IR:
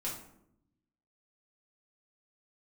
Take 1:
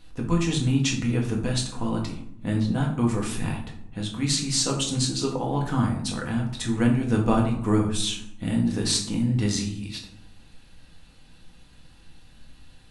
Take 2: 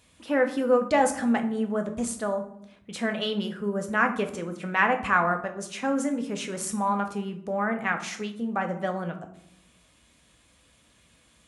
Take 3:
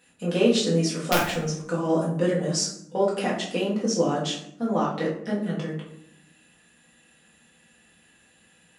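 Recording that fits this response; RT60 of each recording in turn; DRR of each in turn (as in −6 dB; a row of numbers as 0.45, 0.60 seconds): 3; 0.75, 0.75, 0.75 seconds; −0.5, 5.0, −6.5 decibels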